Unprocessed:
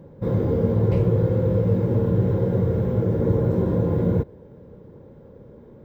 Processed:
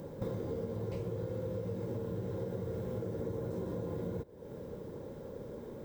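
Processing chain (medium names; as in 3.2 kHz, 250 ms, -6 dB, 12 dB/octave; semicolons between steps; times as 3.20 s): tone controls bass -6 dB, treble +14 dB; compression 10:1, threshold -38 dBFS, peak gain reduction 20 dB; trim +3 dB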